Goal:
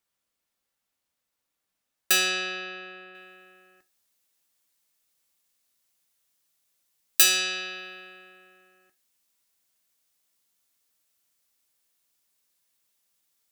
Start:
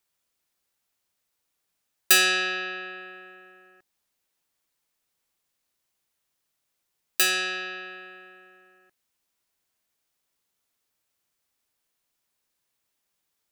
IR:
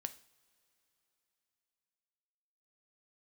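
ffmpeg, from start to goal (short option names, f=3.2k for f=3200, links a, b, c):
-filter_complex "[0:a]asetnsamples=n=441:p=0,asendcmd='3.15 highshelf g 8',highshelf=f=3.3k:g=-3[a];[1:a]atrim=start_sample=2205,afade=t=out:st=0.37:d=0.01,atrim=end_sample=16758,asetrate=88200,aresample=44100[b];[a][b]afir=irnorm=-1:irlink=0,volume=7dB"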